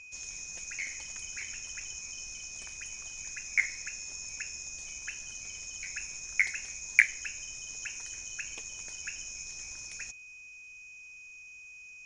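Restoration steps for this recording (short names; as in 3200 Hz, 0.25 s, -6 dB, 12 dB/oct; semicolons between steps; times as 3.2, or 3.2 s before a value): clip repair -6 dBFS; notch 2500 Hz, Q 30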